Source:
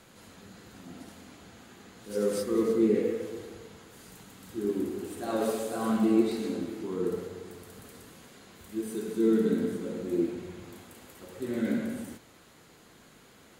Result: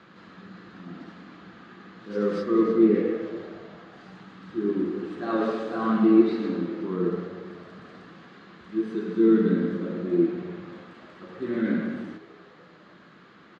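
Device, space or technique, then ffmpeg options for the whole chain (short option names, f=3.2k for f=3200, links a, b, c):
frequency-shifting delay pedal into a guitar cabinet: -filter_complex "[0:a]asplit=5[a][b][c][d][e];[b]adelay=295,afreqshift=92,volume=-22.5dB[f];[c]adelay=590,afreqshift=184,volume=-27.4dB[g];[d]adelay=885,afreqshift=276,volume=-32.3dB[h];[e]adelay=1180,afreqshift=368,volume=-37.1dB[i];[a][f][g][h][i]amix=inputs=5:normalize=0,highpass=79,equalizer=f=89:t=q:w=4:g=-7,equalizer=f=180:t=q:w=4:g=10,equalizer=f=330:t=q:w=4:g=7,equalizer=f=1.2k:t=q:w=4:g=10,equalizer=f=1.7k:t=q:w=4:g=7,lowpass=f=4.4k:w=0.5412,lowpass=f=4.4k:w=1.3066"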